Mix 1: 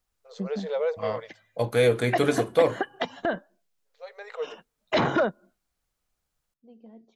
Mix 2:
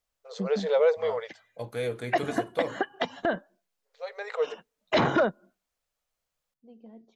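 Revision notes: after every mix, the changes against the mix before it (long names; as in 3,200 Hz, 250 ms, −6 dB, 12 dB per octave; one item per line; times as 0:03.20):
first voice +5.0 dB
second voice −10.5 dB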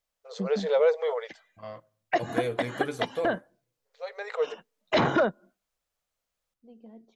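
second voice: entry +0.60 s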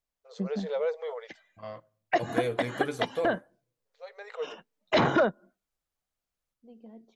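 first voice −7.5 dB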